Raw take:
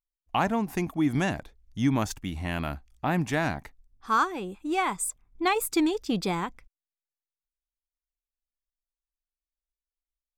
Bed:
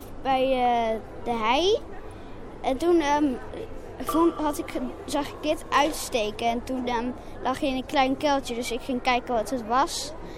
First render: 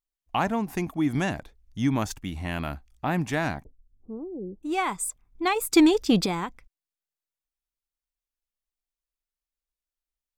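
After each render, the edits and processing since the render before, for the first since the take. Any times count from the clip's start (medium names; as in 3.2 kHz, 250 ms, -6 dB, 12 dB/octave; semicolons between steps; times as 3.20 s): 3.64–4.63 s: steep low-pass 510 Hz; 5.73–6.26 s: gain +7 dB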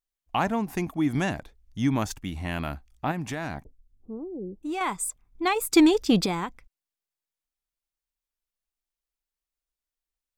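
3.11–4.81 s: compression, threshold -27 dBFS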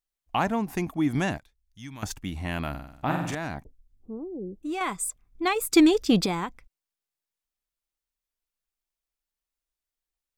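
1.38–2.03 s: amplifier tone stack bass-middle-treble 5-5-5; 2.70–3.35 s: flutter echo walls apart 8 m, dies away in 0.75 s; 4.48–6.13 s: band-stop 900 Hz, Q 5.5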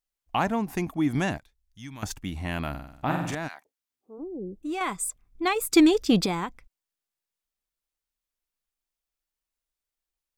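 3.47–4.18 s: high-pass 1.3 kHz -> 460 Hz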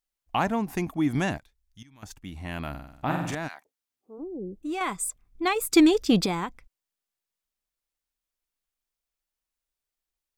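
1.83–3.53 s: fade in equal-power, from -17.5 dB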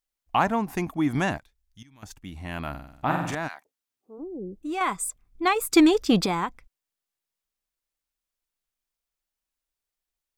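dynamic bell 1.1 kHz, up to +5 dB, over -39 dBFS, Q 0.9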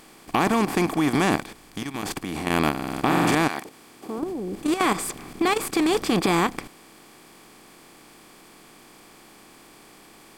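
spectral levelling over time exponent 0.4; level held to a coarse grid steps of 10 dB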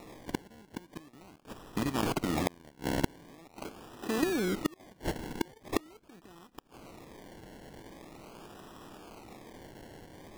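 inverted gate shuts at -14 dBFS, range -33 dB; decimation with a swept rate 28×, swing 60% 0.43 Hz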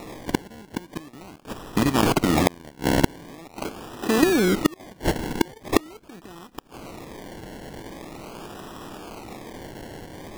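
trim +11 dB; peak limiter -2 dBFS, peak gain reduction 1 dB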